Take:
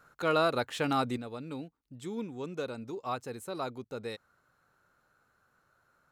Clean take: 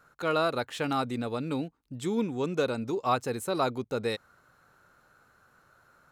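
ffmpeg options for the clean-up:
-af "asetnsamples=n=441:p=0,asendcmd='1.17 volume volume 8.5dB',volume=1"

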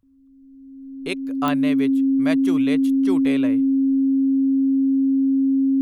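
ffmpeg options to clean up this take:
-af "adeclick=t=4,bandreject=f=270:w=30"

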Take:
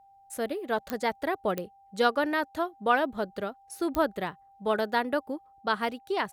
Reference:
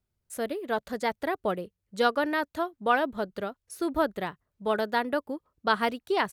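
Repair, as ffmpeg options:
-af "adeclick=t=4,bandreject=f=790:w=30,asetnsamples=n=441:p=0,asendcmd='5.61 volume volume 3dB',volume=1"

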